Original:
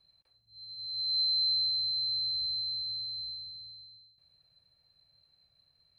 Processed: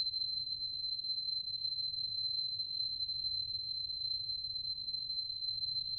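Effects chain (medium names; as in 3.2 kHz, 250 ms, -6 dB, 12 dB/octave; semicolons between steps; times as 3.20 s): octave divider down 2 oct, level -1 dB; small resonant body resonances 940/2400 Hz, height 10 dB, ringing for 30 ms; Paulstretch 25×, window 0.05 s, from 2.79 s; trim -2.5 dB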